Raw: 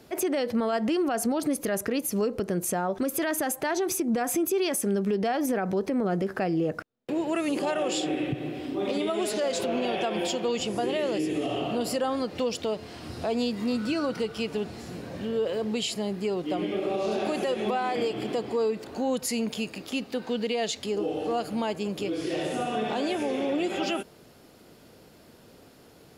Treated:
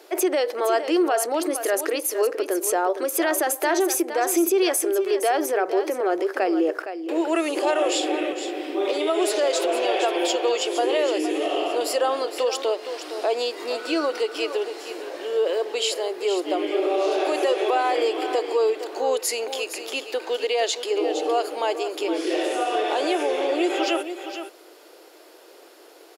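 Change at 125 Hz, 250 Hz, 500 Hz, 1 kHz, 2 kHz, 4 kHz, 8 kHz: under -30 dB, +0.5 dB, +6.5 dB, +7.0 dB, +6.0 dB, +6.0 dB, +6.0 dB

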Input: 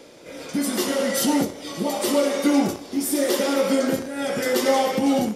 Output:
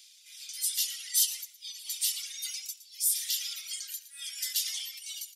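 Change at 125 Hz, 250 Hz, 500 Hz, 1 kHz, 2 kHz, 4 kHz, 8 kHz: under -40 dB, under -40 dB, under -40 dB, under -40 dB, -16.0 dB, -2.5 dB, 0.0 dB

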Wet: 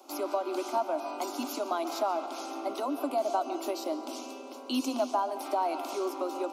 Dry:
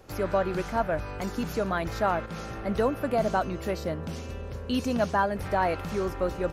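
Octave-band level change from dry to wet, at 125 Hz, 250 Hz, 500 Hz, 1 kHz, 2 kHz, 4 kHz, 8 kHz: under -35 dB, -4.0 dB, -4.0 dB, -1.5 dB, -11.5 dB, +0.5 dB, +3.0 dB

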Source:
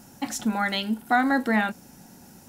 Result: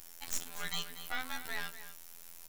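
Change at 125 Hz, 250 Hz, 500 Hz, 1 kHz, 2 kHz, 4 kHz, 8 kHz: n/a, -29.5 dB, -21.5 dB, -20.5 dB, -14.0 dB, -7.5 dB, -4.0 dB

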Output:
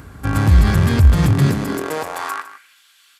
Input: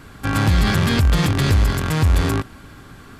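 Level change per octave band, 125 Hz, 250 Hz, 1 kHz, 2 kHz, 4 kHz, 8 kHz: +2.5, +1.5, +0.5, -2.0, -5.5, -2.0 dB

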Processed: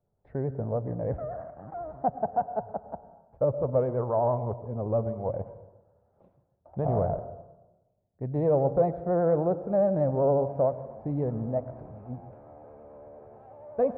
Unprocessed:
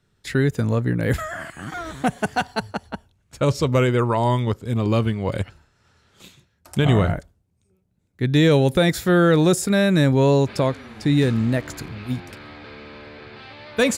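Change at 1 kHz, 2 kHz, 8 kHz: -5.0 dB, under -25 dB, under -40 dB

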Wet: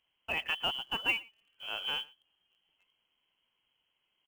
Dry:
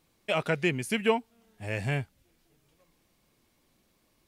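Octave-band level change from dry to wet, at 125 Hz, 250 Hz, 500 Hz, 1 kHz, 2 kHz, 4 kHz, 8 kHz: -24.0, -19.0, -17.5, -6.0, -2.0, +6.5, -13.0 dB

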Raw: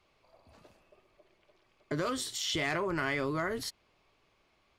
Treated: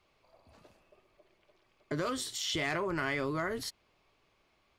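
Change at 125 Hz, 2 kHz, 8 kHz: -1.0, -1.0, -1.0 dB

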